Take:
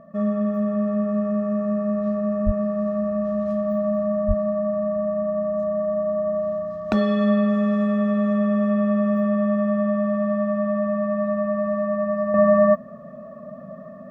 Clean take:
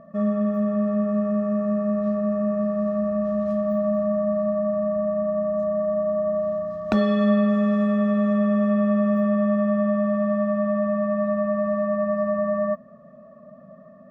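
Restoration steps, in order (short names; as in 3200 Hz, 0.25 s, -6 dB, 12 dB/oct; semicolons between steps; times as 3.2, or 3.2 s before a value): de-plosive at 2.45/4.27; gain 0 dB, from 12.34 s -8 dB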